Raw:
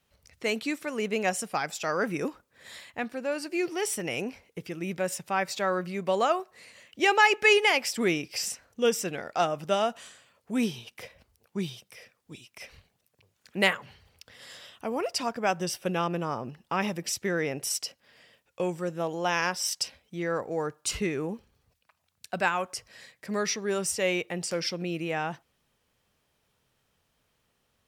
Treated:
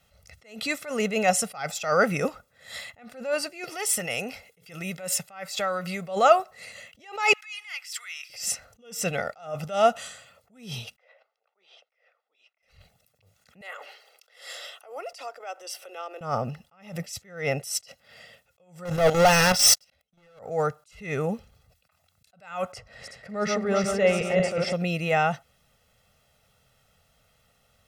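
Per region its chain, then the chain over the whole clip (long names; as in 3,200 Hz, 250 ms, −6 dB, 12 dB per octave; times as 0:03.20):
0:03.64–0:06.07: notch filter 5,800 Hz, Q 16 + downward compressor, threshold −31 dBFS + spectral tilt +1.5 dB per octave
0:07.33–0:08.30: downward compressor 10 to 1, threshold −33 dBFS + high-pass filter 1,300 Hz 24 dB per octave
0:10.96–0:12.63: Bessel high-pass filter 740 Hz, order 6 + head-to-tape spacing loss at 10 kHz 39 dB
0:13.61–0:16.21: Butterworth high-pass 310 Hz 72 dB per octave + downward compressor 8 to 1, threshold −39 dBFS
0:18.85–0:20.39: output level in coarse steps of 17 dB + leveller curve on the samples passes 5 + notch filter 7,400 Hz, Q 24
0:22.72–0:24.73: feedback delay that plays each chunk backwards 186 ms, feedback 60%, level −4.5 dB + low-pass filter 1,300 Hz 6 dB per octave
whole clip: comb filter 1.5 ms, depth 74%; level that may rise only so fast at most 130 dB per second; level +6 dB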